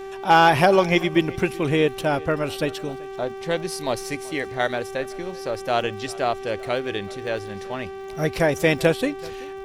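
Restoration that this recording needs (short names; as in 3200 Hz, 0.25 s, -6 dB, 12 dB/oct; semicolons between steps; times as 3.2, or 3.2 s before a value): clip repair -5.5 dBFS; de-click; de-hum 388.1 Hz, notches 9; inverse comb 0.382 s -22 dB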